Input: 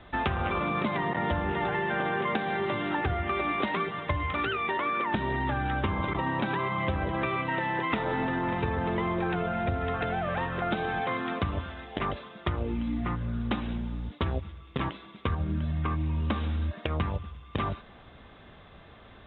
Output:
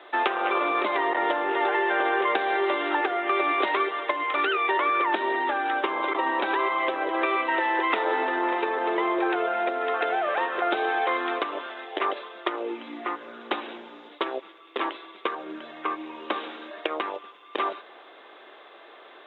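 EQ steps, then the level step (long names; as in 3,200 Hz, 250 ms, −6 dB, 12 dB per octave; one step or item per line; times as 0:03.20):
elliptic high-pass filter 340 Hz, stop band 80 dB
+6.0 dB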